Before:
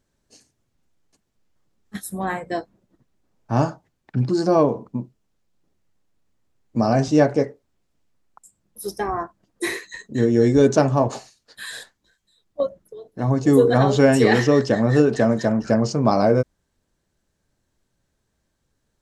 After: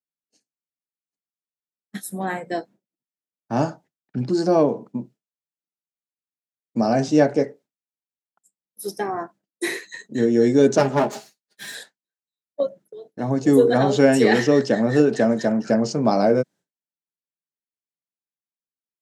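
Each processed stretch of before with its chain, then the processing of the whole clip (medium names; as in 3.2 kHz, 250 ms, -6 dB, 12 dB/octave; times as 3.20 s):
10.78–11.75 s: comb filter that takes the minimum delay 4.9 ms + doubling 14 ms -10.5 dB
whole clip: high-pass 150 Hz 24 dB/octave; expander -40 dBFS; peaking EQ 1.1 kHz -6.5 dB 0.34 oct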